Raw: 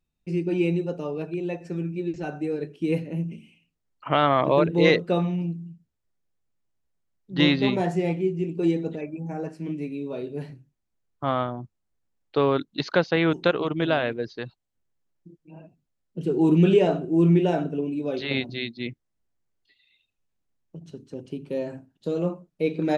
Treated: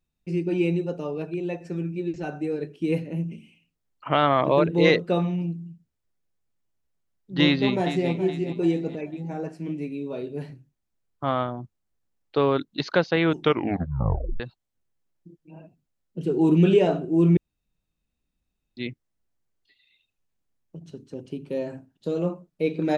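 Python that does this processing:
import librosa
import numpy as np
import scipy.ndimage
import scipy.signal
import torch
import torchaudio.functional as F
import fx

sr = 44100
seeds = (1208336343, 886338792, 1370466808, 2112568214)

y = fx.echo_throw(x, sr, start_s=7.44, length_s=0.66, ms=420, feedback_pct=40, wet_db=-11.0)
y = fx.edit(y, sr, fx.tape_stop(start_s=13.35, length_s=1.05),
    fx.room_tone_fill(start_s=17.37, length_s=1.4), tone=tone)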